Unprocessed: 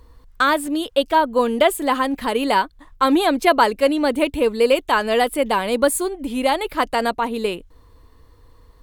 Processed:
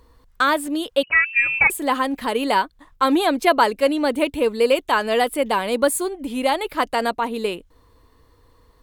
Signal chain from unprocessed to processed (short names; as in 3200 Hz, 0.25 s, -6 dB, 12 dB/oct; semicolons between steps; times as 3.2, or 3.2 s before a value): low shelf 93 Hz -7.5 dB; 1.03–1.7 inverted band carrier 2900 Hz; gain -1 dB